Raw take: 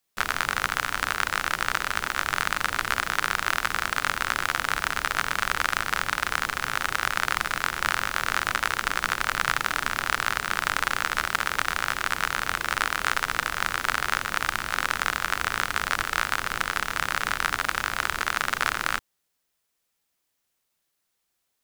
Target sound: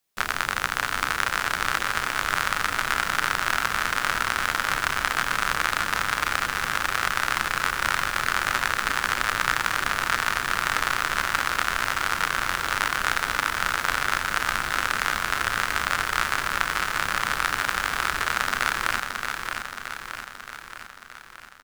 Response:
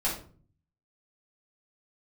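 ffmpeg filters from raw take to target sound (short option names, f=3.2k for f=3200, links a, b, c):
-filter_complex "[0:a]asplit=2[a][b];[b]adelay=32,volume=-14dB[c];[a][c]amix=inputs=2:normalize=0,aecho=1:1:623|1246|1869|2492|3115|3738|4361|4984:0.531|0.308|0.179|0.104|0.0601|0.0348|0.0202|0.0117"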